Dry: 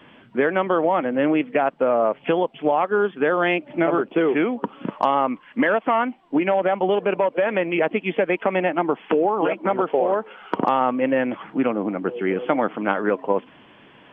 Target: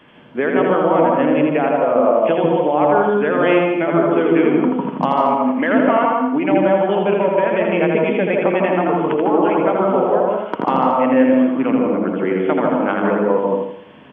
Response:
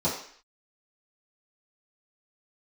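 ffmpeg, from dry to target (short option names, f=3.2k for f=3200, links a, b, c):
-filter_complex "[0:a]aecho=1:1:82|164|246|328|410:0.631|0.252|0.101|0.0404|0.0162,asplit=2[a][b];[1:a]atrim=start_sample=2205,atrim=end_sample=3528,adelay=144[c];[b][c]afir=irnorm=-1:irlink=0,volume=-13dB[d];[a][d]amix=inputs=2:normalize=0"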